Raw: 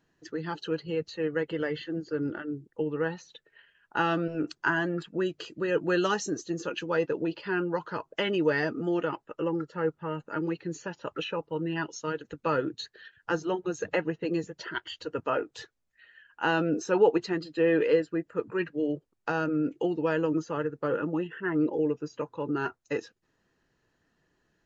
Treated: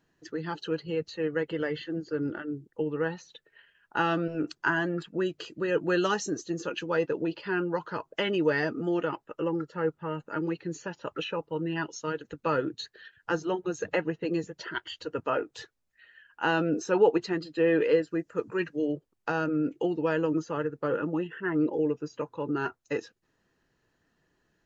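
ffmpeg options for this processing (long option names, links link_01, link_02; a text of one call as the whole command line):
ffmpeg -i in.wav -filter_complex "[0:a]asettb=1/sr,asplit=3[link_01][link_02][link_03];[link_01]atrim=end=18.074[link_04];[link_02]atrim=start=18.07:end=18.85,asetpts=PTS-STARTPTS,afade=type=in:duration=0.004:curve=qsin,afade=type=out:start_time=0.776:duration=0.004:curve=qsin,equalizer=frequency=6100:width_type=o:width=0.77:gain=11[link_05];[link_03]atrim=start=18.846[link_06];[link_04][link_05]acrossfade=duration=0.004:curve1=hsin:curve2=qsin[link_07];[link_07][link_06]acrossfade=duration=0.004:curve1=qsin:curve2=hsin" out.wav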